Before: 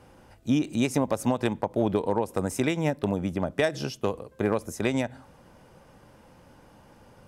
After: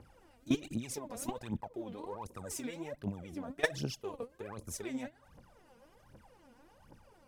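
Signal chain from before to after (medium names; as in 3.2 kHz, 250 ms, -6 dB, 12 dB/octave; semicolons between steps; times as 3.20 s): level held to a coarse grid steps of 21 dB; phaser 1.3 Hz, delay 4.4 ms, feedback 79%; trim -2.5 dB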